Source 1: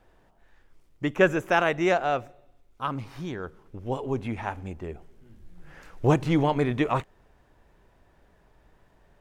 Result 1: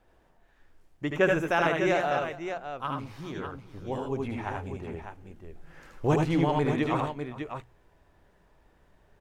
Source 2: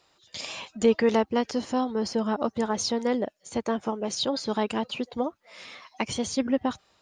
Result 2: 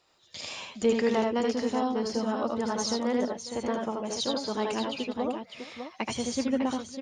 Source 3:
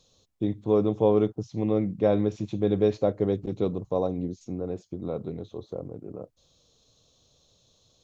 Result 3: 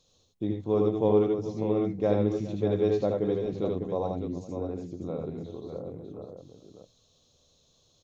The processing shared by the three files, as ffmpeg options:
-filter_complex "[0:a]bandreject=f=60:t=h:w=6,bandreject=f=120:t=h:w=6,bandreject=f=180:t=h:w=6,asplit=2[s0][s1];[s1]aecho=0:1:77|89|410|601:0.668|0.398|0.126|0.398[s2];[s0][s2]amix=inputs=2:normalize=0,volume=0.631"

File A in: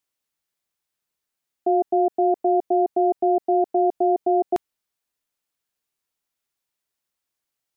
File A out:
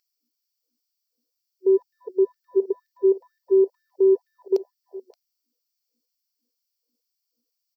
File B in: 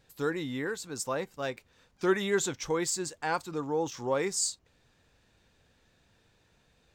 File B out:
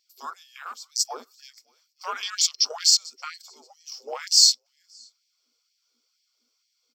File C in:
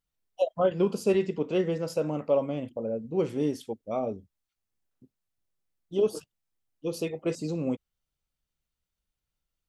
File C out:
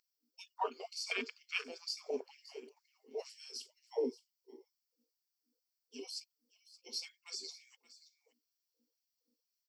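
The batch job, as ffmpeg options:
-filter_complex "[0:a]afreqshift=-320,crystalizer=i=5.5:c=0,acrossover=split=6400[s0][s1];[s1]acompressor=threshold=0.0251:ratio=4:attack=1:release=60[s2];[s0][s2]amix=inputs=2:normalize=0,aeval=exprs='val(0)+0.00447*(sin(2*PI*60*n/s)+sin(2*PI*2*60*n/s)/2+sin(2*PI*3*60*n/s)/3+sin(2*PI*4*60*n/s)/4+sin(2*PI*5*60*n/s)/5)':c=same,asplit=2[s3][s4];[s4]aecho=0:1:575:0.141[s5];[s3][s5]amix=inputs=2:normalize=0,afwtdn=0.0224,superequalizer=6b=0.282:7b=2:11b=0.447:14b=3.55:16b=0.355,afftfilt=real='re*gte(b*sr/1024,240*pow(1700/240,0.5+0.5*sin(2*PI*2.1*pts/sr)))':imag='im*gte(b*sr/1024,240*pow(1700/240,0.5+0.5*sin(2*PI*2.1*pts/sr)))':win_size=1024:overlap=0.75"

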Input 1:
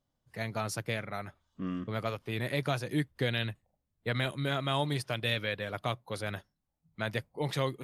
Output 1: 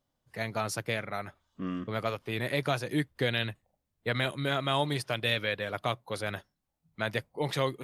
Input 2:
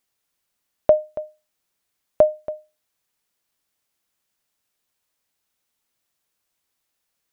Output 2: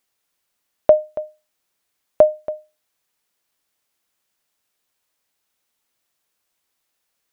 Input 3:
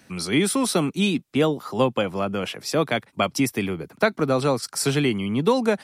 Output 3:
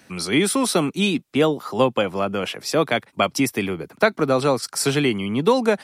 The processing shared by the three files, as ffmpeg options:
-af "bass=f=250:g=-4,treble=f=4000:g=-1,volume=1.41"

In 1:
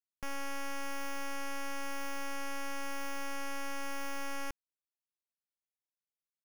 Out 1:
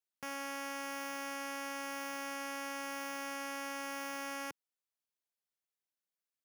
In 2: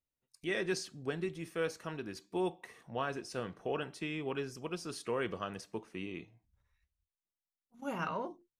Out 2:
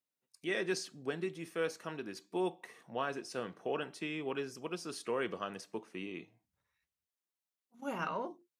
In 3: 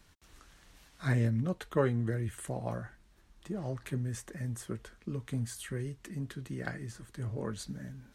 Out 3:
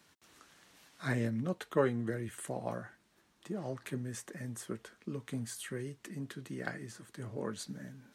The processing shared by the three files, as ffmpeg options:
-af "highpass=180"

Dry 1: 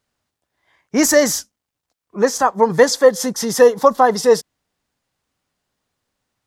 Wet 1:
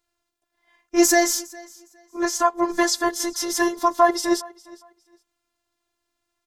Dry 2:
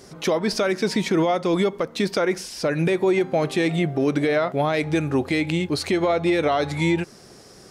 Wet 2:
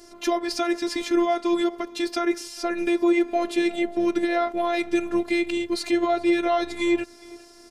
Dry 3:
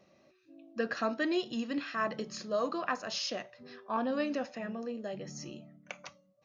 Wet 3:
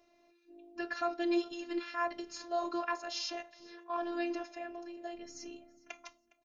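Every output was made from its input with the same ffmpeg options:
-af "aecho=1:1:410|820:0.0708|0.0149,afftfilt=real='hypot(re,im)*cos(PI*b)':imag='0':win_size=512:overlap=0.75,volume=1.12"

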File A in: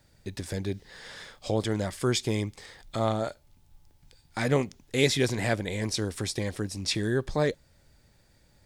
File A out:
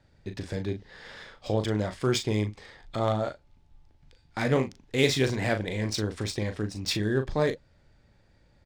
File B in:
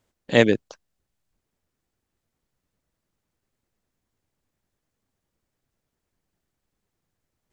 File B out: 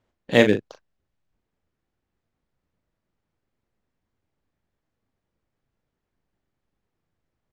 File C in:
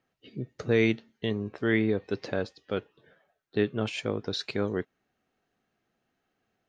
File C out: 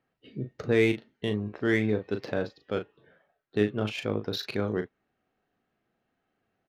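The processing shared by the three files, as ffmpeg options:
-filter_complex "[0:a]adynamicsmooth=sensitivity=5.5:basefreq=4200,asplit=2[s0][s1];[s1]adelay=38,volume=0.398[s2];[s0][s2]amix=inputs=2:normalize=0"

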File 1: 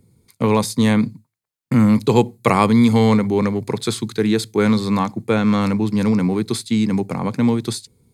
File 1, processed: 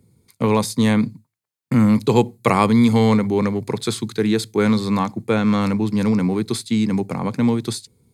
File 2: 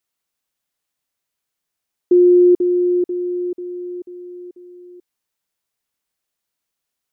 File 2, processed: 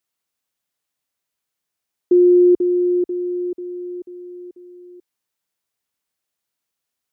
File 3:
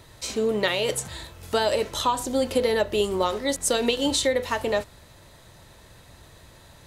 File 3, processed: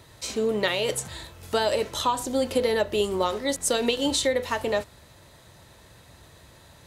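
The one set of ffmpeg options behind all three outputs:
-af "highpass=49,volume=0.891"

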